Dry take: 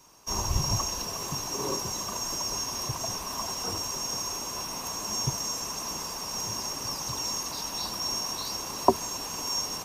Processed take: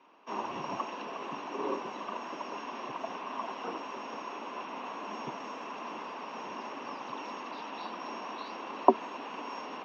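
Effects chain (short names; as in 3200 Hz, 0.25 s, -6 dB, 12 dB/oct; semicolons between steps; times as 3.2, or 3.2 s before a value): elliptic band-pass 240–2900 Hz, stop band 60 dB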